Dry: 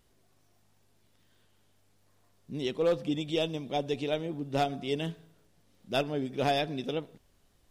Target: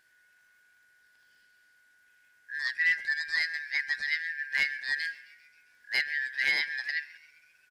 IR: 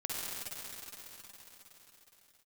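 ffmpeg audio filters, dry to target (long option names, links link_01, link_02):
-filter_complex "[0:a]afftfilt=real='real(if(lt(b,272),68*(eq(floor(b/68),0)*3+eq(floor(b/68),1)*0+eq(floor(b/68),2)*1+eq(floor(b/68),3)*2)+mod(b,68),b),0)':imag='imag(if(lt(b,272),68*(eq(floor(b/68),0)*3+eq(floor(b/68),1)*0+eq(floor(b/68),2)*1+eq(floor(b/68),3)*2)+mod(b,68),b),0)':win_size=2048:overlap=0.75,asplit=6[link_01][link_02][link_03][link_04][link_05][link_06];[link_02]adelay=133,afreqshift=130,volume=-22.5dB[link_07];[link_03]adelay=266,afreqshift=260,volume=-26.5dB[link_08];[link_04]adelay=399,afreqshift=390,volume=-30.5dB[link_09];[link_05]adelay=532,afreqshift=520,volume=-34.5dB[link_10];[link_06]adelay=665,afreqshift=650,volume=-38.6dB[link_11];[link_01][link_07][link_08][link_09][link_10][link_11]amix=inputs=6:normalize=0"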